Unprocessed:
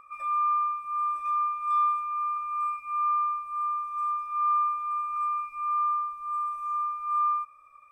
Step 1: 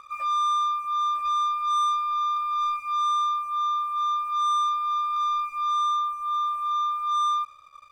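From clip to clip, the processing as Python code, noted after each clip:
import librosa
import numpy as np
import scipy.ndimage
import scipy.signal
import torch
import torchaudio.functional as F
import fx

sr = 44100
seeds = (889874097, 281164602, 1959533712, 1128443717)

y = fx.bass_treble(x, sr, bass_db=-4, treble_db=-6)
y = fx.leveller(y, sr, passes=2)
y = F.gain(torch.from_numpy(y), -1.0).numpy()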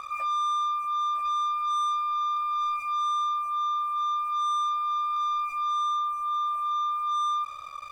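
y = fx.peak_eq(x, sr, hz=730.0, db=6.5, octaves=0.37)
y = fx.env_flatten(y, sr, amount_pct=50)
y = F.gain(torch.from_numpy(y), -4.0).numpy()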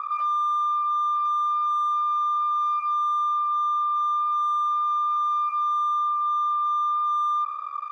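y = np.clip(x, -10.0 ** (-30.5 / 20.0), 10.0 ** (-30.5 / 20.0))
y = fx.bandpass_q(y, sr, hz=1200.0, q=2.8)
y = F.gain(torch.from_numpy(y), 8.0).numpy()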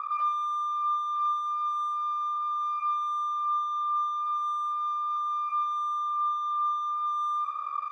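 y = fx.rider(x, sr, range_db=3, speed_s=0.5)
y = fx.echo_feedback(y, sr, ms=114, feedback_pct=45, wet_db=-10)
y = F.gain(torch.from_numpy(y), -4.0).numpy()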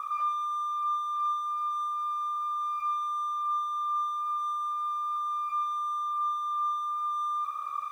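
y = x + 0.5 * 10.0 ** (-49.0 / 20.0) * np.sign(x)
y = F.gain(torch.from_numpy(y), -2.0).numpy()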